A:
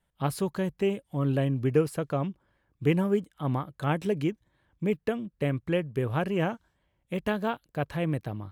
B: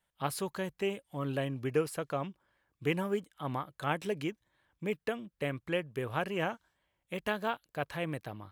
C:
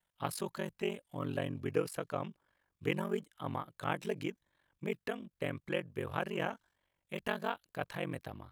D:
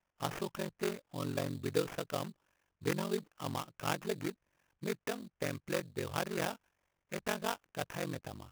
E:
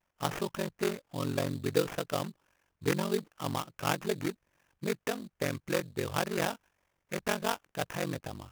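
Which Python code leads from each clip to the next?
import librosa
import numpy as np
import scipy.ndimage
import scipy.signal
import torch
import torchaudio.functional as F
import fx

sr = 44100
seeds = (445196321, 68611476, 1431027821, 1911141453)

y1 = fx.low_shelf(x, sr, hz=440.0, db=-11.5)
y2 = y1 * np.sin(2.0 * np.pi * 23.0 * np.arange(len(y1)) / sr)
y3 = fx.sample_hold(y2, sr, seeds[0], rate_hz=4200.0, jitter_pct=20)
y4 = fx.vibrato(y3, sr, rate_hz=0.66, depth_cents=26.0)
y4 = y4 * 10.0 ** (4.5 / 20.0)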